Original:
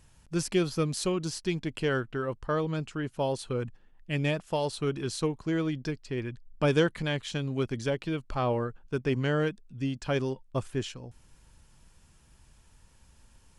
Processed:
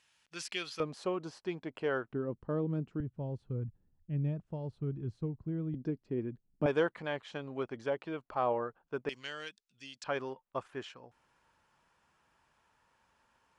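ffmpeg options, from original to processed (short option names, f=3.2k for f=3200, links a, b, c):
-af "asetnsamples=n=441:p=0,asendcmd='0.8 bandpass f 770;2.13 bandpass f 240;3 bandpass f 100;5.74 bandpass f 270;6.66 bandpass f 840;9.09 bandpass f 4600;10.04 bandpass f 1100',bandpass=f=2.8k:t=q:w=0.99:csg=0"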